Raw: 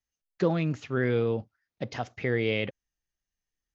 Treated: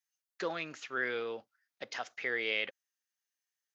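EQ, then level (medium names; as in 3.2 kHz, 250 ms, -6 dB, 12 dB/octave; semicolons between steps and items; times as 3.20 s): high-pass 430 Hz 12 dB/octave; peaking EQ 1.5 kHz +6 dB 0.97 oct; treble shelf 2.2 kHz +11 dB; -8.5 dB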